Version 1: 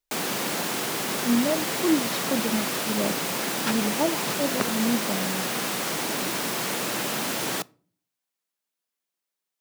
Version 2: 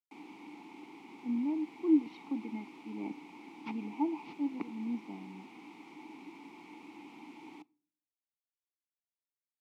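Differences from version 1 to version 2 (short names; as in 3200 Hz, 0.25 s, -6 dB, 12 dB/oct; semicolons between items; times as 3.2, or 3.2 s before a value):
background -9.5 dB; master: add vowel filter u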